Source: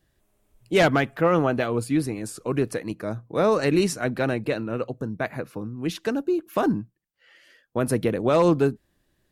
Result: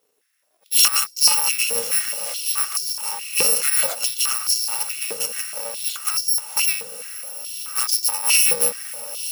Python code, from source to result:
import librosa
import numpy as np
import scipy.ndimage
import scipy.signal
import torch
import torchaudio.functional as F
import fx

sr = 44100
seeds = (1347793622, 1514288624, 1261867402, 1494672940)

p1 = fx.bit_reversed(x, sr, seeds[0], block=128)
p2 = fx.vibrato(p1, sr, rate_hz=2.9, depth_cents=12.0)
p3 = p2 + fx.echo_diffused(p2, sr, ms=1039, feedback_pct=56, wet_db=-10.0, dry=0)
p4 = fx.filter_held_highpass(p3, sr, hz=4.7, low_hz=430.0, high_hz=4900.0)
y = p4 * librosa.db_to_amplitude(2.0)